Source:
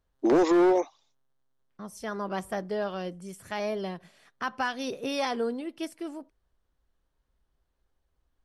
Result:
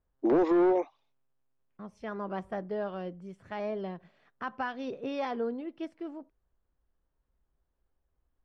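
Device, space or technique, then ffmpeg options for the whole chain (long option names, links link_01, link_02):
phone in a pocket: -filter_complex "[0:a]lowpass=3600,highshelf=frequency=2000:gain=-8.5,asettb=1/sr,asplit=3[link_01][link_02][link_03];[link_01]atrim=end=0.754[link_04];[link_02]atrim=start=0.75:end=2.26,asetpts=PTS-STARTPTS,afade=type=in:duration=0.004:curve=qsin,afade=type=out:start_time=1.506:duration=0.004:curve=qsin,equalizer=frequency=2500:width_type=o:width=0.49:gain=7[link_05];[link_03]atrim=start=2.256[link_06];[link_04][link_05]acrossfade=duration=0.004:curve1=hsin:curve2=qsin[link_07];[link_07][link_06]acrossfade=duration=0.004:curve1=qsin:curve2=hsin,volume=-2.5dB"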